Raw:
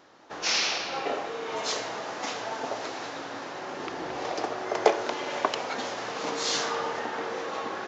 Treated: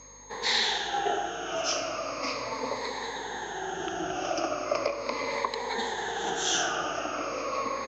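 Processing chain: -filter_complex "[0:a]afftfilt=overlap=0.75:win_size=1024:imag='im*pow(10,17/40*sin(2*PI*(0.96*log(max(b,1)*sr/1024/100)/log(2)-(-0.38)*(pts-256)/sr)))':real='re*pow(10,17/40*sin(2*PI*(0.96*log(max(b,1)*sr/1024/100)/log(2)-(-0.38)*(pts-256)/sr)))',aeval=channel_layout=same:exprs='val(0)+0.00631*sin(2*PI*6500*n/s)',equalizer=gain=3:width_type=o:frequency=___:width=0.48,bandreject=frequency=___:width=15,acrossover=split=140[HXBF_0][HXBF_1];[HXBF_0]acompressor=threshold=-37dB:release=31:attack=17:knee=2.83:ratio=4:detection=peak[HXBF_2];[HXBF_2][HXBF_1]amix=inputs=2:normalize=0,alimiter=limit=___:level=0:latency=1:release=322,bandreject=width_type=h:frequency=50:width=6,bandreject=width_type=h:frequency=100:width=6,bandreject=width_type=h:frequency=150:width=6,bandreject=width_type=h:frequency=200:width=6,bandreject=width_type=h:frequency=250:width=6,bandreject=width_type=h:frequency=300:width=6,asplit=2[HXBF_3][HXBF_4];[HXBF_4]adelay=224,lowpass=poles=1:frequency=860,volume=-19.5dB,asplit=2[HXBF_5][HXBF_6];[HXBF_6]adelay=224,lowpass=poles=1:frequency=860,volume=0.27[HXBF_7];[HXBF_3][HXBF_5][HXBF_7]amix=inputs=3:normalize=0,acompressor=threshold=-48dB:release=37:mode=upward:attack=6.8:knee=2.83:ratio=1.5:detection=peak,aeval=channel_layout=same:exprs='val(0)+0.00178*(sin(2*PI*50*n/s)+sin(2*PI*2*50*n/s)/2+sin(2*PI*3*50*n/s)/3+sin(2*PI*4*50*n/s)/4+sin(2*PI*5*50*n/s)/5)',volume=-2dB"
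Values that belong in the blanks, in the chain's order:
79, 6700, -12dB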